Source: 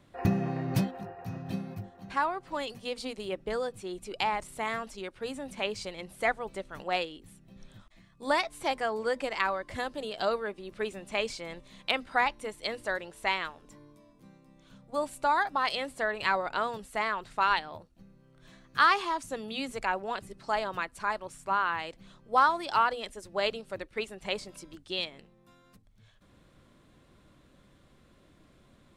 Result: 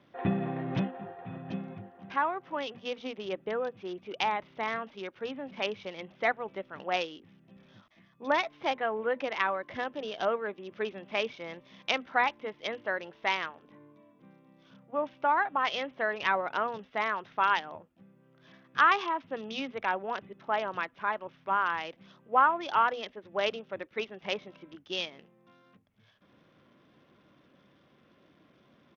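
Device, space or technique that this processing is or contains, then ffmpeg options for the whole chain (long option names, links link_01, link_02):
Bluetooth headset: -af "highpass=160,aresample=8000,aresample=44100" -ar 48000 -c:a sbc -b:a 64k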